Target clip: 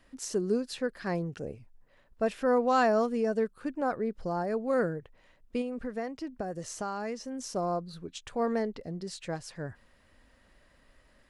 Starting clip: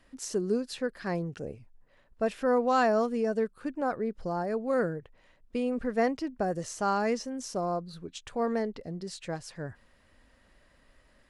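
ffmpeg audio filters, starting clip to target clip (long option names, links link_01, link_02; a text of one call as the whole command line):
ffmpeg -i in.wav -filter_complex "[0:a]asettb=1/sr,asplit=3[link_01][link_02][link_03];[link_01]atrim=end=5.614[link_04];[link_02]atrim=start=5.61:end=7.51,asetpts=PTS-STARTPTS,afade=type=in:duration=0.004:curve=qsin,afade=type=out:start_time=1.896:duration=0.004:curve=qsin,acompressor=threshold=-33dB:ratio=4[link_05];[link_03]atrim=start=7.506[link_06];[link_04][link_05]acrossfade=duration=0.004:curve1=hsin:curve2=qsin[link_07];[link_07][link_06]acrossfade=duration=0.004:curve1=qsin:curve2=hsin" out.wav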